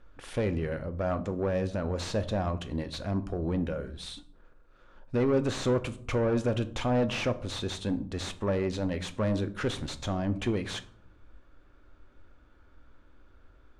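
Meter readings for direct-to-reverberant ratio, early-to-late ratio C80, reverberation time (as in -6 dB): 10.0 dB, 20.0 dB, 0.55 s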